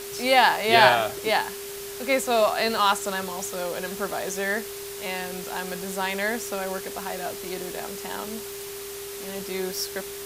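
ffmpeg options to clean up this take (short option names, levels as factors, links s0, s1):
-af "adeclick=t=4,bandreject=f=59:t=h:w=4,bandreject=f=118:t=h:w=4,bandreject=f=177:t=h:w=4,bandreject=f=236:t=h:w=4,bandreject=f=400:w=30,afftdn=nr=30:nf=-36"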